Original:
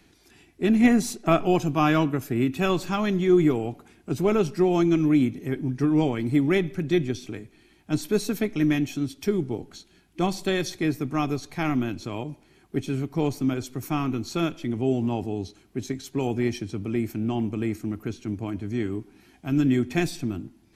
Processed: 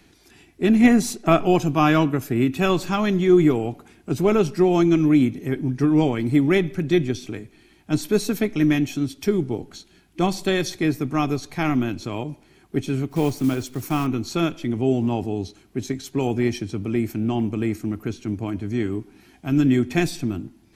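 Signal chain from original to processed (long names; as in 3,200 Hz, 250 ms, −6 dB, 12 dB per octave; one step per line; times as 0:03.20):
0:13.09–0:14.07: one scale factor per block 5 bits
level +3.5 dB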